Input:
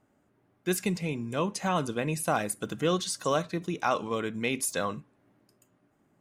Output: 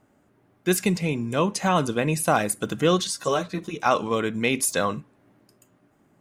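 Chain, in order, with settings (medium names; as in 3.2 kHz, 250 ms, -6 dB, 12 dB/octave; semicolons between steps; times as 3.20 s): 3.07–3.86 s: three-phase chorus; trim +6.5 dB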